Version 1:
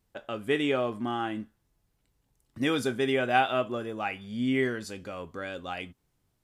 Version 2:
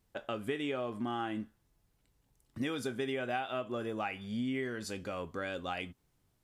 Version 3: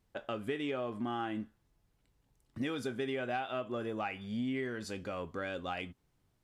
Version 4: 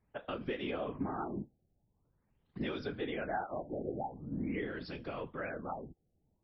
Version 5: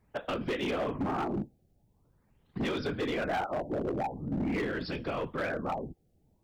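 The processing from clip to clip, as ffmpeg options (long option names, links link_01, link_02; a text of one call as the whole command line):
ffmpeg -i in.wav -af "acompressor=threshold=-32dB:ratio=8" out.wav
ffmpeg -i in.wav -af "highshelf=frequency=6900:gain=-7.5,asoftclip=type=tanh:threshold=-22dB" out.wav
ffmpeg -i in.wav -af "afftfilt=real='hypot(re,im)*cos(2*PI*random(0))':imag='hypot(re,im)*sin(2*PI*random(1))':win_size=512:overlap=0.75,afftfilt=real='re*lt(b*sr/1024,810*pow(5800/810,0.5+0.5*sin(2*PI*0.45*pts/sr)))':imag='im*lt(b*sr/1024,810*pow(5800/810,0.5+0.5*sin(2*PI*0.45*pts/sr)))':win_size=1024:overlap=0.75,volume=4.5dB" out.wav
ffmpeg -i in.wav -af "volume=35.5dB,asoftclip=hard,volume=-35.5dB,volume=8dB" out.wav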